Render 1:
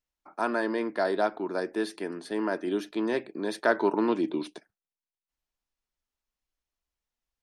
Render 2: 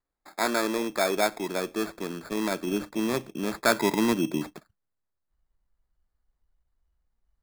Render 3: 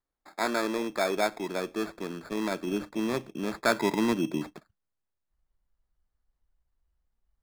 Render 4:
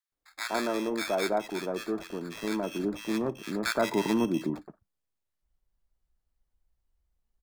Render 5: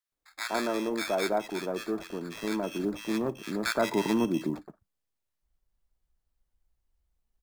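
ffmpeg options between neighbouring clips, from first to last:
-af "lowpass=f=8000:w=0.5412,lowpass=f=8000:w=1.3066,asubboost=boost=8:cutoff=140,acrusher=samples=15:mix=1:aa=0.000001,volume=1.33"
-af "highshelf=f=7600:g=-8.5,volume=0.794"
-filter_complex "[0:a]acrossover=split=1300[s0][s1];[s0]adelay=120[s2];[s2][s1]amix=inputs=2:normalize=0"
-af "acrusher=bits=9:mode=log:mix=0:aa=0.000001"

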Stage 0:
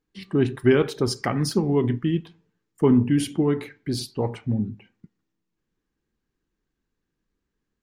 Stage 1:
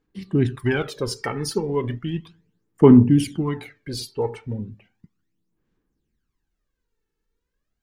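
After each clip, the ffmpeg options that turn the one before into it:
-af "aphaser=in_gain=1:out_gain=1:delay=2.3:decay=0.66:speed=0.35:type=sinusoidal,volume=0.75"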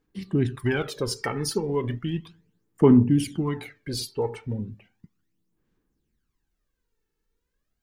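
-filter_complex "[0:a]asplit=2[s0][s1];[s1]acompressor=threshold=0.0562:ratio=6,volume=0.944[s2];[s0][s2]amix=inputs=2:normalize=0,highshelf=f=8400:g=3.5,volume=0.501"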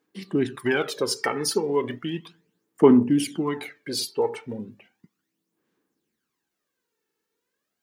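-af "highpass=280,volume=1.58"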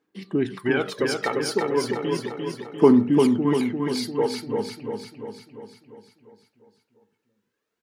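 -filter_complex "[0:a]highshelf=f=5600:g=-9,asplit=2[s0][s1];[s1]aecho=0:1:347|694|1041|1388|1735|2082|2429|2776:0.631|0.353|0.198|0.111|0.0621|0.0347|0.0195|0.0109[s2];[s0][s2]amix=inputs=2:normalize=0"

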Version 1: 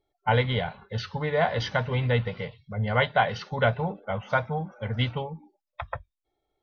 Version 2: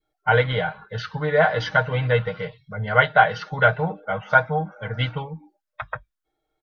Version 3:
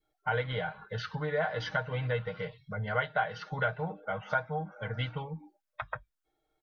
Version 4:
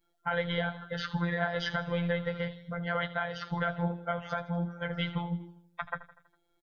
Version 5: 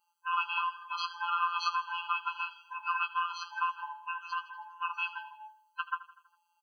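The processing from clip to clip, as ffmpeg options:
-af "equalizer=f=1500:w=3.1:g=10,aecho=1:1:6.4:0.73,adynamicequalizer=threshold=0.0316:dfrequency=640:dqfactor=1.1:tfrequency=640:tqfactor=1.1:attack=5:release=100:ratio=0.375:range=2.5:mode=boostabove:tftype=bell,volume=0.891"
-af "acompressor=threshold=0.02:ratio=2,volume=0.794"
-af "alimiter=limit=0.0668:level=0:latency=1:release=46,afftfilt=real='hypot(re,im)*cos(PI*b)':imag='0':win_size=1024:overlap=0.75,aecho=1:1:81|162|243|324|405:0.15|0.0808|0.0436|0.0236|0.0127,volume=2.11"
-af "afftfilt=real='real(if(lt(b,1008),b+24*(1-2*mod(floor(b/24),2)),b),0)':imag='imag(if(lt(b,1008),b+24*(1-2*mod(floor(b/24),2)),b),0)':win_size=2048:overlap=0.75,afftfilt=real='re*eq(mod(floor(b*sr/1024/820),2),1)':imag='im*eq(mod(floor(b*sr/1024/820),2),1)':win_size=1024:overlap=0.75,volume=2"

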